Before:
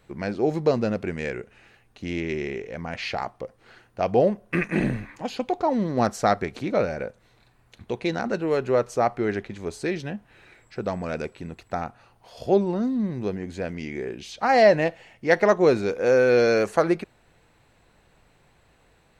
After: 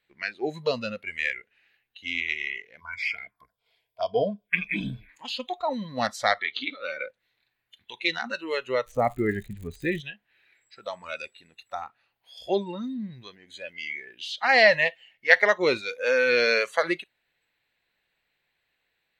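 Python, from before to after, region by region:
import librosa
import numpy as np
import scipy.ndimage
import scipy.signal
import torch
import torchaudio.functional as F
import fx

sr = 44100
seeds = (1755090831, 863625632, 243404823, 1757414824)

y = fx.chain(x, sr, fx.ripple_eq(per_octave=1.7, db=10),
    fx.env_phaser(low_hz=220.0, high_hz=2000.0, full_db=-20.5), at=(2.8, 5.09))
y = fx.chain(y, sr, fx.cabinet(low_hz=160.0, low_slope=12, high_hz=5400.0, hz=(190.0, 290.0, 420.0, 650.0, 1200.0, 3400.0), db=(-5, 5, 3, -3, 4, 6)),
    fx.over_compress(threshold_db=-25.0, ratio=-0.5), at=(6.39, 7.06))
y = fx.tilt_eq(y, sr, slope=-4.0, at=(8.86, 10.0), fade=0.02)
y = fx.dmg_crackle(y, sr, seeds[0], per_s=120.0, level_db=-31.0, at=(8.86, 10.0), fade=0.02)
y = fx.low_shelf(y, sr, hz=220.0, db=-10.5)
y = fx.noise_reduce_blind(y, sr, reduce_db=17)
y = fx.band_shelf(y, sr, hz=2700.0, db=11.5, octaves=1.7)
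y = F.gain(torch.from_numpy(y), -3.0).numpy()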